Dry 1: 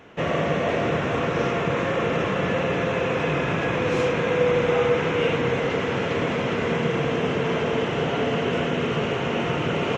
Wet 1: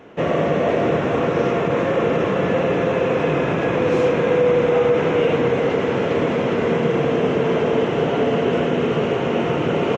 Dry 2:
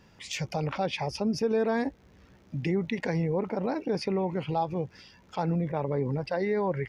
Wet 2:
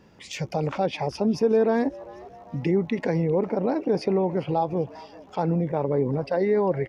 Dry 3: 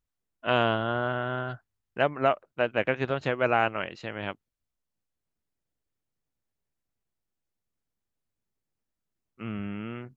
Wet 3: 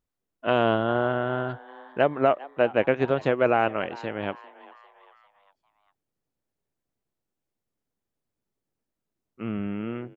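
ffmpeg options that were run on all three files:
-filter_complex "[0:a]equalizer=f=380:w=0.45:g=8,asplit=5[a][b][c][d][e];[b]adelay=399,afreqshift=130,volume=-21dB[f];[c]adelay=798,afreqshift=260,volume=-27.2dB[g];[d]adelay=1197,afreqshift=390,volume=-33.4dB[h];[e]adelay=1596,afreqshift=520,volume=-39.6dB[i];[a][f][g][h][i]amix=inputs=5:normalize=0,alimiter=level_in=5.5dB:limit=-1dB:release=50:level=0:latency=1,volume=-7dB"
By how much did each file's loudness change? +4.5, +5.0, +3.0 LU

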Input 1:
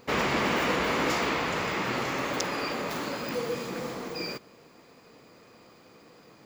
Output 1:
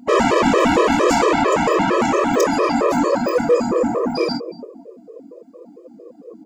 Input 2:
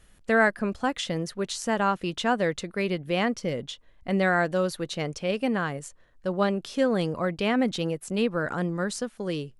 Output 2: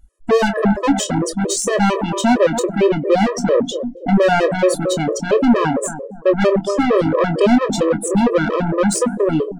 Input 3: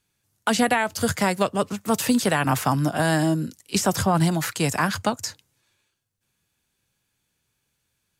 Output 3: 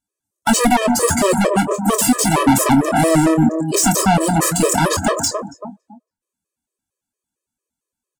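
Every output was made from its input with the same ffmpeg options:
-filter_complex "[0:a]asplit=2[a][b];[b]adelay=100,highpass=300,lowpass=3.4k,asoftclip=type=hard:threshold=-18.5dB,volume=-17dB[c];[a][c]amix=inputs=2:normalize=0,asplit=2[d][e];[e]asoftclip=type=hard:threshold=-22dB,volume=-10dB[f];[d][f]amix=inputs=2:normalize=0,acontrast=89,equalizer=f=125:t=o:w=1:g=-7,equalizer=f=250:t=o:w=1:g=8,equalizer=f=500:t=o:w=1:g=5,equalizer=f=1k:t=o:w=1:g=5,equalizer=f=2k:t=o:w=1:g=-5,equalizer=f=4k:t=o:w=1:g=-4,equalizer=f=8k:t=o:w=1:g=8,asplit=2[g][h];[h]adelay=279,lowpass=f=2.9k:p=1,volume=-14dB,asplit=2[i][j];[j]adelay=279,lowpass=f=2.9k:p=1,volume=0.36,asplit=2[k][l];[l]adelay=279,lowpass=f=2.9k:p=1,volume=0.36[m];[i][k][m]amix=inputs=3:normalize=0[n];[g][n]amix=inputs=2:normalize=0,afftdn=nr=25:nf=-32,asoftclip=type=tanh:threshold=-13.5dB,asplit=2[o][p];[p]adelay=25,volume=-9.5dB[q];[o][q]amix=inputs=2:normalize=0,afftfilt=real='re*gt(sin(2*PI*4.4*pts/sr)*(1-2*mod(floor(b*sr/1024/330),2)),0)':imag='im*gt(sin(2*PI*4.4*pts/sr)*(1-2*mod(floor(b*sr/1024/330),2)),0)':win_size=1024:overlap=0.75,volume=5dB"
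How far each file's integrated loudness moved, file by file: +12.0, +10.5, +7.5 LU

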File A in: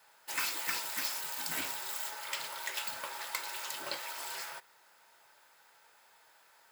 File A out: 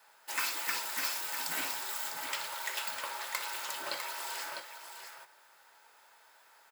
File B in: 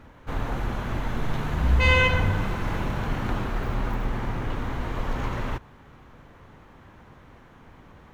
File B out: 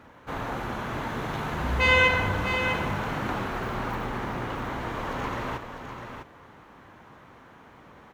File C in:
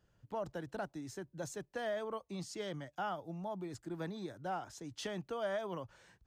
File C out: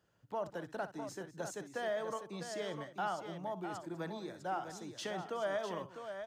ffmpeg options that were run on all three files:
-filter_complex "[0:a]highpass=f=190:p=1,acrossover=split=1400[a][b];[a]crystalizer=i=6.5:c=0[c];[c][b]amix=inputs=2:normalize=0,aecho=1:1:61|200|652:0.2|0.141|0.398"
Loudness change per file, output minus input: +1.0, -0.5, +1.0 LU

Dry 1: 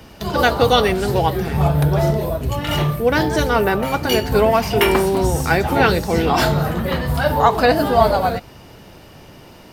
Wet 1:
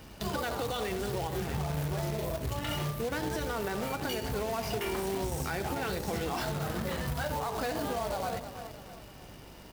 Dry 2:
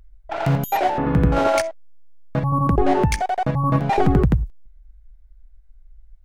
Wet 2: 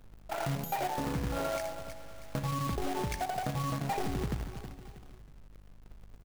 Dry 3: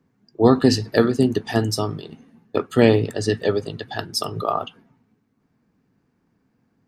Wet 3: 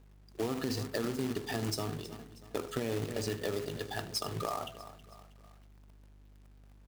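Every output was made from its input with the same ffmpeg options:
-filter_complex "[0:a]asplit=2[a][b];[b]aecho=0:1:77:0.133[c];[a][c]amix=inputs=2:normalize=0,aeval=exprs='val(0)+0.00398*(sin(2*PI*50*n/s)+sin(2*PI*2*50*n/s)/2+sin(2*PI*3*50*n/s)/3+sin(2*PI*4*50*n/s)/4+sin(2*PI*5*50*n/s)/5)':c=same,bandreject=f=82.84:t=h:w=4,bandreject=f=165.68:t=h:w=4,bandreject=f=248.52:t=h:w=4,bandreject=f=331.36:t=h:w=4,bandreject=f=414.2:t=h:w=4,bandreject=f=497.04:t=h:w=4,bandreject=f=579.88:t=h:w=4,bandreject=f=662.72:t=h:w=4,bandreject=f=745.56:t=h:w=4,bandreject=f=828.4:t=h:w=4,bandreject=f=911.24:t=h:w=4,bandreject=f=994.08:t=h:w=4,asplit=2[d][e];[e]aecho=0:1:319|638|957:0.112|0.0494|0.0217[f];[d][f]amix=inputs=2:normalize=0,alimiter=limit=-11dB:level=0:latency=1:release=58,acompressor=threshold=-22dB:ratio=6,acrusher=bits=2:mode=log:mix=0:aa=0.000001,volume=-8.5dB"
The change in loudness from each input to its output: -16.5, -15.0, -15.5 LU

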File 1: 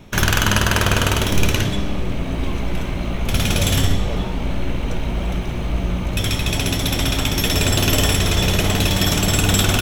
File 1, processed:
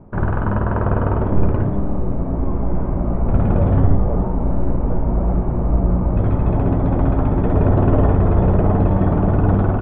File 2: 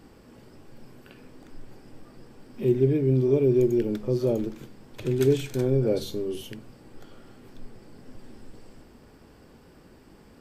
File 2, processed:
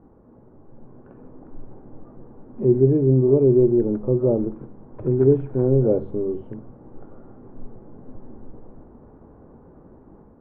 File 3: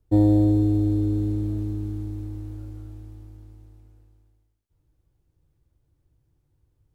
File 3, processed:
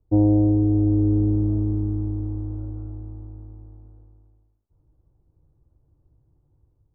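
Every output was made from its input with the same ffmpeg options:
-af "lowpass=f=1.1k:w=0.5412,lowpass=f=1.1k:w=1.3066,dynaudnorm=f=600:g=3:m=5.5dB"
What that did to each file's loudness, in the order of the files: +1.0, +5.0, +1.5 LU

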